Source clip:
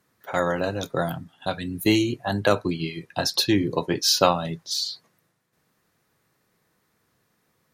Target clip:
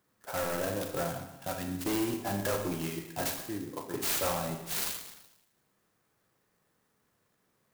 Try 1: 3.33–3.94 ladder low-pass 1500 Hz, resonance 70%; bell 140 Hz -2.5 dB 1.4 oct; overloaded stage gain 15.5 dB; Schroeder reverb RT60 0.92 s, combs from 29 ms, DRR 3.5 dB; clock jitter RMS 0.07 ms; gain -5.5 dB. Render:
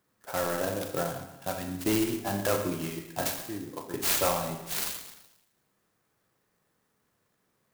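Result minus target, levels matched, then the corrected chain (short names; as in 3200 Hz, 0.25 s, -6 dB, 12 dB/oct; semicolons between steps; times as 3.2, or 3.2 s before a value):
overloaded stage: distortion -6 dB
3.33–3.94 ladder low-pass 1500 Hz, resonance 70%; bell 140 Hz -2.5 dB 1.4 oct; overloaded stage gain 23 dB; Schroeder reverb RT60 0.92 s, combs from 29 ms, DRR 3.5 dB; clock jitter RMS 0.07 ms; gain -5.5 dB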